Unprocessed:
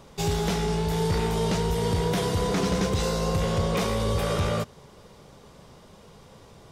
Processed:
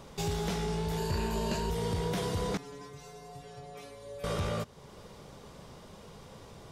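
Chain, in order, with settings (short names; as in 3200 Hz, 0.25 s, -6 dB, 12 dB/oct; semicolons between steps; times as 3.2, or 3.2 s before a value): 0.97–1.7 ripple EQ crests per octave 1.4, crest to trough 11 dB; compressor 1.5:1, threshold -42 dBFS, peak gain reduction 8 dB; 2.57–4.24 metallic resonator 140 Hz, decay 0.44 s, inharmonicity 0.002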